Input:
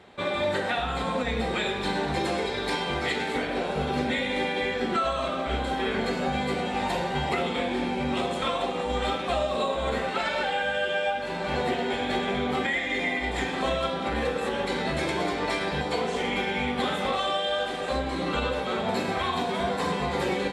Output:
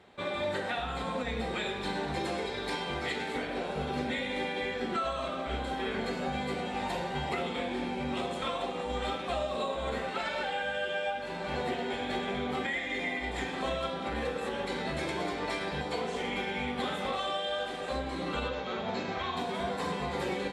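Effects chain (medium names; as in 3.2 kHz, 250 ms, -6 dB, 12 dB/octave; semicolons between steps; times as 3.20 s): 18.48–19.37 s: elliptic low-pass 6.7 kHz, stop band 50 dB; trim -6 dB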